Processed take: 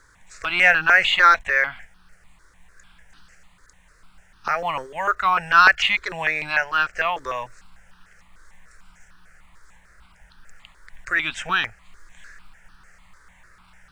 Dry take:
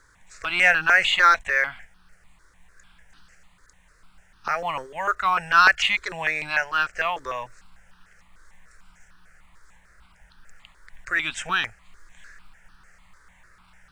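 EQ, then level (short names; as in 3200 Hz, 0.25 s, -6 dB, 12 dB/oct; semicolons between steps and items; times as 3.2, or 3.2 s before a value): dynamic EQ 8300 Hz, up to -7 dB, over -44 dBFS, Q 1; +2.5 dB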